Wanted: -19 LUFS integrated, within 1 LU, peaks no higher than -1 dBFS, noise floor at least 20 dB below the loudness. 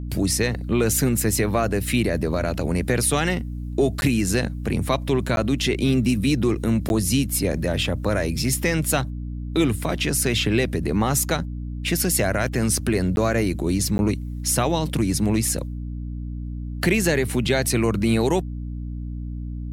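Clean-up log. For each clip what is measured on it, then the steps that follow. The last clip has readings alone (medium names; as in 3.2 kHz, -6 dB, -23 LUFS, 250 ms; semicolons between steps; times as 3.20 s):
dropouts 5; longest dropout 11 ms; hum 60 Hz; highest harmonic 300 Hz; hum level -28 dBFS; loudness -22.0 LUFS; peak level -7.5 dBFS; loudness target -19.0 LUFS
-> interpolate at 4.01/5.36/6.89/13.16/13.98 s, 11 ms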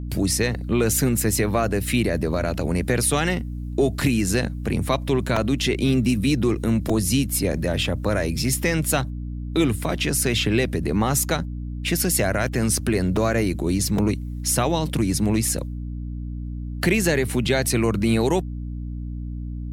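dropouts 0; hum 60 Hz; highest harmonic 300 Hz; hum level -28 dBFS
-> de-hum 60 Hz, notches 5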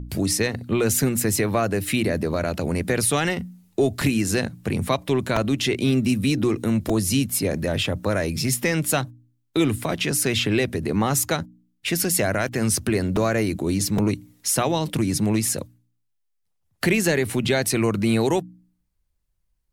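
hum not found; loudness -22.5 LUFS; peak level -8.0 dBFS; loudness target -19.0 LUFS
-> trim +3.5 dB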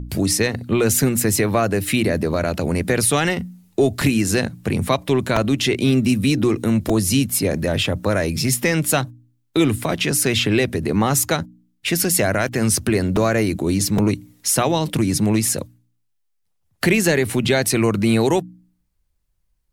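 loudness -19.0 LUFS; peak level -4.5 dBFS; noise floor -68 dBFS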